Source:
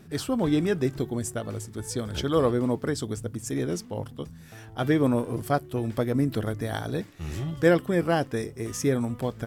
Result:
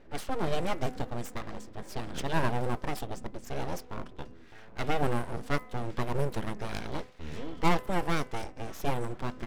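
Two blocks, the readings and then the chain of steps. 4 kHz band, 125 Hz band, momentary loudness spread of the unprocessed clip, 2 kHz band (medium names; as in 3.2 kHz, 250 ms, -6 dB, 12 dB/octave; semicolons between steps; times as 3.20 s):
-4.0 dB, -6.5 dB, 12 LU, -3.0 dB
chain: level-controlled noise filter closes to 2.5 kHz, open at -20 dBFS; full-wave rectifier; de-hum 253.2 Hz, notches 11; trim -2.5 dB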